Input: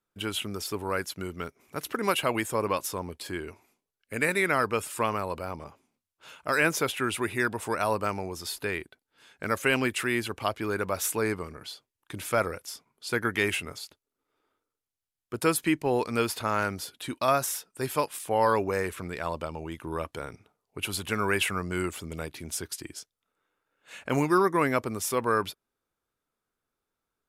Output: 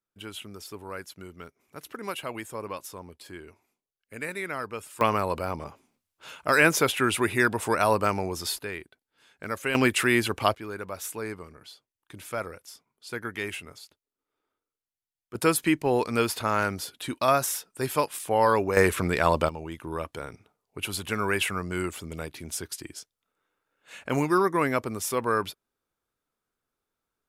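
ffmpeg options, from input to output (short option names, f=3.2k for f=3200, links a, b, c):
-af "asetnsamples=n=441:p=0,asendcmd='5.01 volume volume 4.5dB;8.59 volume volume -4dB;9.75 volume volume 5.5dB;10.55 volume volume -6.5dB;15.35 volume volume 2dB;18.77 volume volume 10dB;19.49 volume volume 0dB',volume=-8dB"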